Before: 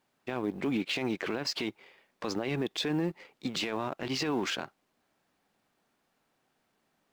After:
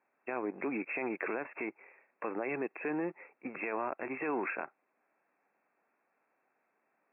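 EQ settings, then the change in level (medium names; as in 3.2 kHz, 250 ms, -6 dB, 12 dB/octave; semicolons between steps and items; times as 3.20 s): high-pass 370 Hz 12 dB/octave; brick-wall FIR low-pass 2.7 kHz; 0.0 dB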